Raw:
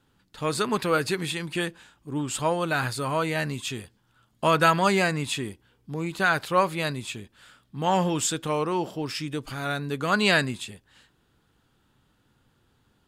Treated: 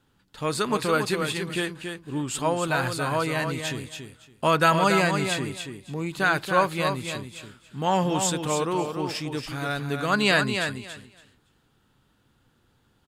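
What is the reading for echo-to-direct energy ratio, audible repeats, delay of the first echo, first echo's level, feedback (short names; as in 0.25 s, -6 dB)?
-6.5 dB, 2, 0.281 s, -6.5 dB, 18%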